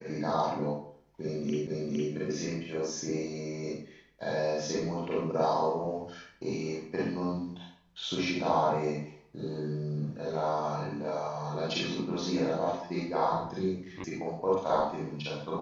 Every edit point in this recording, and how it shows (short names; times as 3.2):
1.67 repeat of the last 0.46 s
14.04 sound cut off